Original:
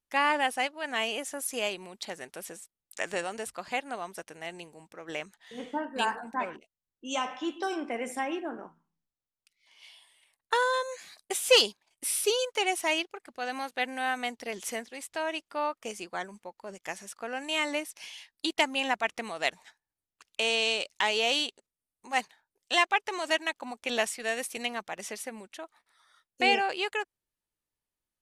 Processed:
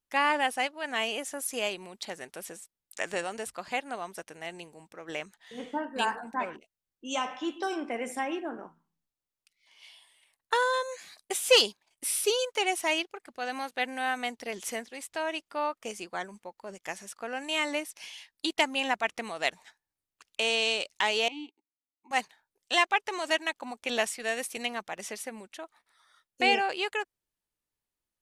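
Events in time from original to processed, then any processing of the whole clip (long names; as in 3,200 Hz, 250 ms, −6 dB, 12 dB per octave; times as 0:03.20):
0:21.28–0:22.11: formant filter u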